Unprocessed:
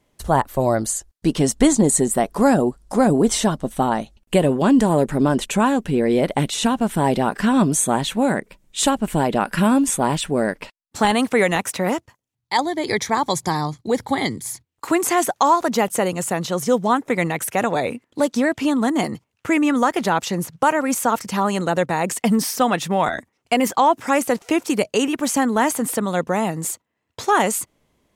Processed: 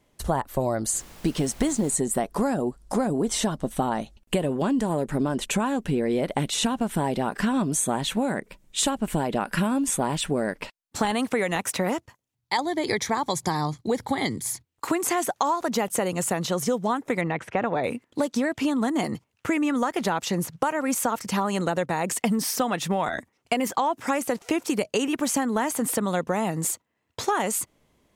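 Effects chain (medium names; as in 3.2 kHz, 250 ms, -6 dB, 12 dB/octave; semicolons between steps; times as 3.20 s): 17.21–17.84 s: low-pass 2.5 kHz 12 dB/octave; compression, threshold -21 dBFS, peak gain reduction 11 dB; 0.92–1.94 s: added noise pink -47 dBFS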